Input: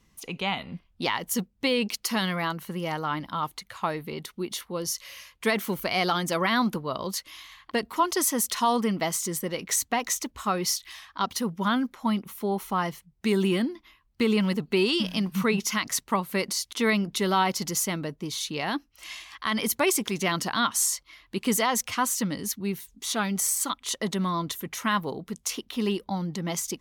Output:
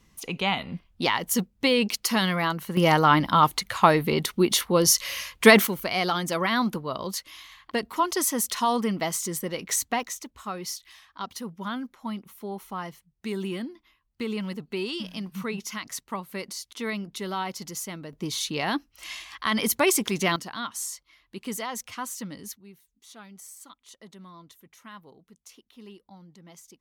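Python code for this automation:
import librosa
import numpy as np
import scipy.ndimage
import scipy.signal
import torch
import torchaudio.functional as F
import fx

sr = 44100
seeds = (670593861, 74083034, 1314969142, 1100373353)

y = fx.gain(x, sr, db=fx.steps((0.0, 3.0), (2.77, 11.0), (5.67, -0.5), (10.03, -7.5), (18.13, 2.0), (20.36, -8.5), (22.57, -19.5)))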